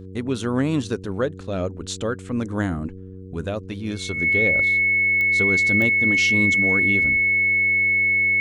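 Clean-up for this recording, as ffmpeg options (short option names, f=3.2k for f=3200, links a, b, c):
-af "adeclick=t=4,bandreject=f=94.2:t=h:w=4,bandreject=f=188.4:t=h:w=4,bandreject=f=282.6:t=h:w=4,bandreject=f=376.8:t=h:w=4,bandreject=f=471:t=h:w=4,bandreject=f=2.2k:w=30"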